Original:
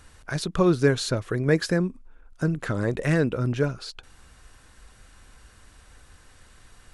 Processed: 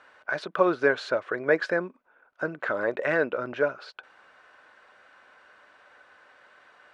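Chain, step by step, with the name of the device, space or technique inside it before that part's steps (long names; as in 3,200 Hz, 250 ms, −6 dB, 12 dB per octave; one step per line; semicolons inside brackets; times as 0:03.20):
tin-can telephone (band-pass filter 570–2,100 Hz; hollow resonant body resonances 590/1,500 Hz, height 7 dB)
level +4 dB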